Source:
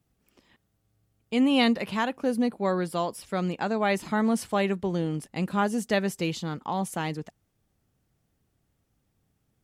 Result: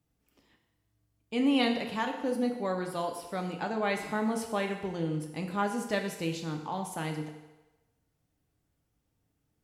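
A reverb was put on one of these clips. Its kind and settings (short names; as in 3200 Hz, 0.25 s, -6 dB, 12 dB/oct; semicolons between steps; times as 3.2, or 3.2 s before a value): FDN reverb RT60 1.1 s, low-frequency decay 0.7×, high-frequency decay 0.9×, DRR 3 dB; gain -6 dB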